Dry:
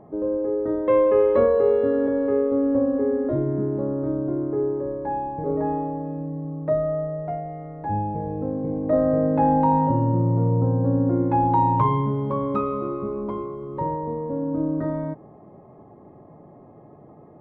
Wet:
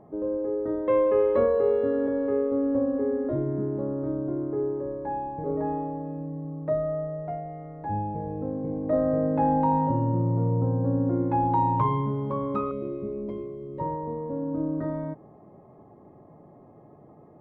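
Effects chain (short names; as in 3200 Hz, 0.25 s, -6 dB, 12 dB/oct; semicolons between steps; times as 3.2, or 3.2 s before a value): 12.71–13.8 band shelf 1100 Hz -15 dB 1.2 oct; gain -4 dB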